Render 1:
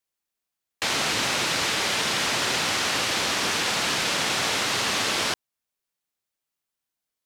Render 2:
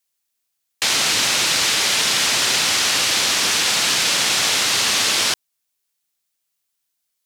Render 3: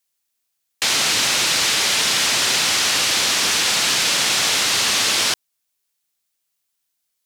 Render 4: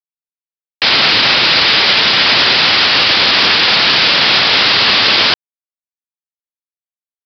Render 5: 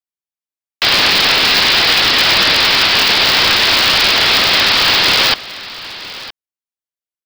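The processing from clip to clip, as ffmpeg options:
ffmpeg -i in.wav -af "highshelf=frequency=2300:gain=11" out.wav
ffmpeg -i in.wav -af "acontrast=53,volume=-5.5dB" out.wav
ffmpeg -i in.wav -af "aresample=11025,acrusher=bits=7:mix=0:aa=0.000001,aresample=44100,alimiter=level_in=17.5dB:limit=-1dB:release=50:level=0:latency=1,volume=-1dB" out.wav
ffmpeg -i in.wav -af "aecho=1:1:965:0.141,aeval=exprs='val(0)*sgn(sin(2*PI*100*n/s))':channel_layout=same,volume=-1dB" out.wav

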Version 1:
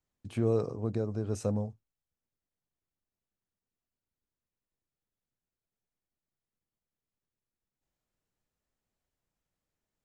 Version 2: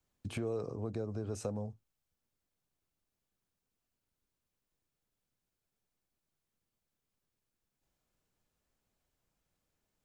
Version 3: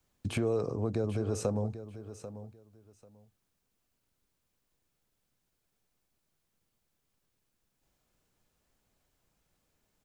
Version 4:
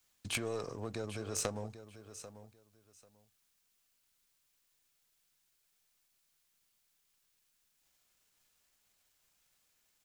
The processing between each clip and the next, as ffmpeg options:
ffmpeg -i in.wav -filter_complex "[0:a]bandreject=frequency=1900:width=21,acrossover=split=330|720|2500[link_01][link_02][link_03][link_04];[link_01]alimiter=level_in=5.5dB:limit=-24dB:level=0:latency=1,volume=-5.5dB[link_05];[link_05][link_02][link_03][link_04]amix=inputs=4:normalize=0,acompressor=threshold=-41dB:ratio=3,volume=4.5dB" out.wav
ffmpeg -i in.wav -af "aecho=1:1:791|1582:0.224|0.0425,volume=6.5dB" out.wav
ffmpeg -i in.wav -af "aeval=exprs='if(lt(val(0),0),0.708*val(0),val(0))':channel_layout=same,tiltshelf=frequency=970:gain=-9,aeval=exprs='0.1*(cos(1*acos(clip(val(0)/0.1,-1,1)))-cos(1*PI/2))+0.0355*(cos(3*acos(clip(val(0)/0.1,-1,1)))-cos(3*PI/2))+0.00891*(cos(5*acos(clip(val(0)/0.1,-1,1)))-cos(5*PI/2))':channel_layout=same,volume=7dB" out.wav

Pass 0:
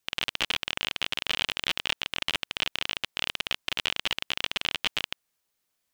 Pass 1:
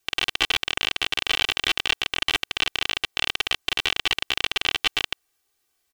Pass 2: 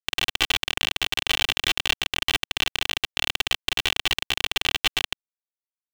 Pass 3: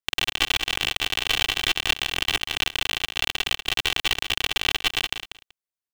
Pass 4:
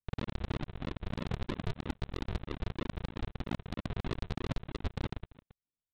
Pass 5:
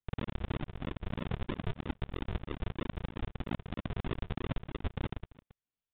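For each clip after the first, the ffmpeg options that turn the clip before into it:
ffmpeg -i in.wav -af "aecho=1:1:2.6:0.93,volume=3dB" out.wav
ffmpeg -i in.wav -af "acrusher=bits=4:mix=0:aa=0.000001,bass=frequency=250:gain=6,treble=frequency=4000:gain=3,volume=-1dB" out.wav
ffmpeg -i in.wav -af "aecho=1:1:190|380:0.316|0.0506" out.wav
ffmpeg -i in.wav -af "aresample=8000,acrusher=samples=20:mix=1:aa=0.000001:lfo=1:lforange=20:lforate=3.1,aresample=44100,asoftclip=type=tanh:threshold=-21dB,volume=-4.5dB" out.wav
ffmpeg -i in.wav -af "aresample=8000,aresample=44100" out.wav

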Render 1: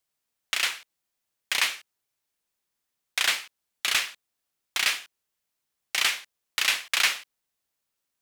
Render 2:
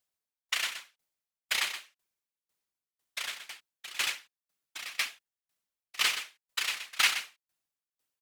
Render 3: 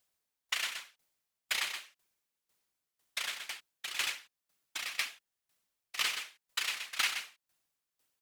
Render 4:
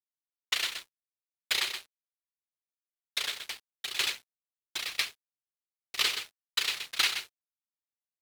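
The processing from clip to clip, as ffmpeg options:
ffmpeg -i in.wav -filter_complex "[0:a]afftfilt=real='hypot(re,im)*cos(2*PI*random(0))':imag='hypot(re,im)*sin(2*PI*random(1))':win_size=512:overlap=0.75,asplit=2[link_01][link_02];[link_02]aecho=0:1:124:0.631[link_03];[link_01][link_03]amix=inputs=2:normalize=0,aeval=exprs='val(0)*pow(10,-23*if(lt(mod(2*n/s,1),2*abs(2)/1000),1-mod(2*n/s,1)/(2*abs(2)/1000),(mod(2*n/s,1)-2*abs(2)/1000)/(1-2*abs(2)/1000))/20)':channel_layout=same,volume=5.5dB" out.wav
ffmpeg -i in.wav -af "acompressor=threshold=-43dB:ratio=2,volume=5.5dB" out.wav
ffmpeg -i in.wav -af "equalizer=frequency=100:width_type=o:width=0.67:gain=11,equalizer=frequency=400:width_type=o:width=0.67:gain=11,equalizer=frequency=4000:width_type=o:width=0.67:gain=7,equalizer=frequency=16000:width_type=o:width=0.67:gain=3,aeval=exprs='sgn(val(0))*max(abs(val(0))-0.00447,0)':channel_layout=same,acompressor=mode=upward:threshold=-43dB:ratio=2.5,volume=2dB" out.wav

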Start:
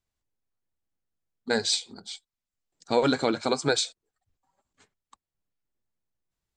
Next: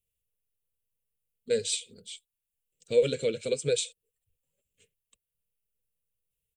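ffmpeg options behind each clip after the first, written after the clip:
ffmpeg -i in.wav -af "firequalizer=gain_entry='entry(150,0);entry(300,-14);entry(480,6);entry(790,-30);entry(2700,6);entry(4500,-10);entry(10000,11)':delay=0.05:min_phase=1,volume=-2dB" out.wav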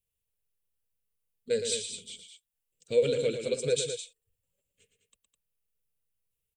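ffmpeg -i in.wav -af "aecho=1:1:113.7|207:0.398|0.355,volume=-1.5dB" out.wav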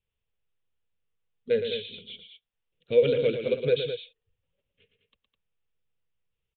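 ffmpeg -i in.wav -af "aresample=8000,aresample=44100,volume=4dB" out.wav

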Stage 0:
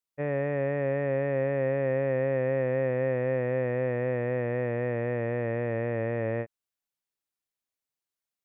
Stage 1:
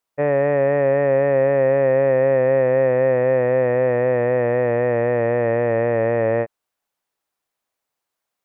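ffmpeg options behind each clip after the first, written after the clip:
ffmpeg -i in.wav -filter_complex "[0:a]equalizer=frequency=800:width=0.55:gain=9.5,asplit=2[link_01][link_02];[link_02]alimiter=limit=-20dB:level=0:latency=1:release=17,volume=1dB[link_03];[link_01][link_03]amix=inputs=2:normalize=0" out.wav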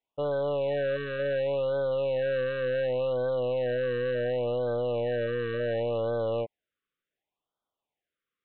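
ffmpeg -i in.wav -af "aresample=8000,asoftclip=type=tanh:threshold=-21.5dB,aresample=44100,afftfilt=real='re*(1-between(b*sr/1024,740*pow(2200/740,0.5+0.5*sin(2*PI*0.69*pts/sr))/1.41,740*pow(2200/740,0.5+0.5*sin(2*PI*0.69*pts/sr))*1.41))':imag='im*(1-between(b*sr/1024,740*pow(2200/740,0.5+0.5*sin(2*PI*0.69*pts/sr))/1.41,740*pow(2200/740,0.5+0.5*sin(2*PI*0.69*pts/sr))*1.41))':win_size=1024:overlap=0.75,volume=-4dB" out.wav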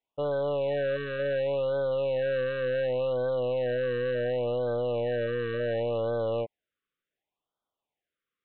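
ffmpeg -i in.wav -af anull out.wav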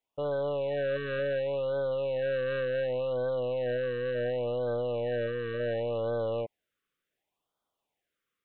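ffmpeg -i in.wav -af "alimiter=level_in=6dB:limit=-24dB:level=0:latency=1:release=33,volume=-6dB,dynaudnorm=framelen=100:gausssize=3:maxgain=4dB" out.wav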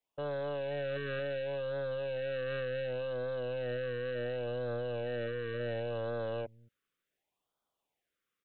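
ffmpeg -i in.wav -filter_complex "[0:a]acrossover=split=240|1200[link_01][link_02][link_03];[link_01]aecho=1:1:222:0.188[link_04];[link_02]asoftclip=type=tanh:threshold=-33dB[link_05];[link_04][link_05][link_03]amix=inputs=3:normalize=0,volume=-2dB" out.wav

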